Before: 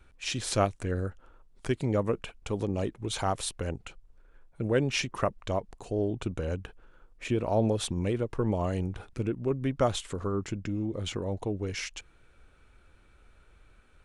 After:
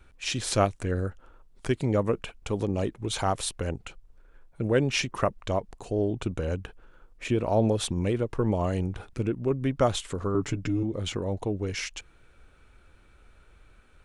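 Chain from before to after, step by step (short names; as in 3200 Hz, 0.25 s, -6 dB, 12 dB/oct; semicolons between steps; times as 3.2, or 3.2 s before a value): 10.34–10.83 comb 7 ms, depth 95%; gain +2.5 dB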